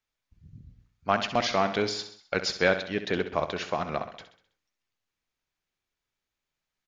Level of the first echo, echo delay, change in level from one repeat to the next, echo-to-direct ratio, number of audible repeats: −11.0 dB, 65 ms, −6.0 dB, −9.5 dB, 5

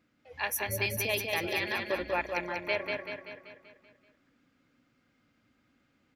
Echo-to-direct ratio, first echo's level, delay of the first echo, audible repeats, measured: −2.5 dB, −4.0 dB, 192 ms, 6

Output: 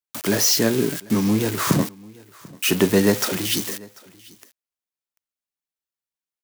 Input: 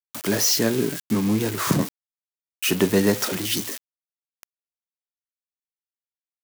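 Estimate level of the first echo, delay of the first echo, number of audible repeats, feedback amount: −23.5 dB, 741 ms, 1, repeats not evenly spaced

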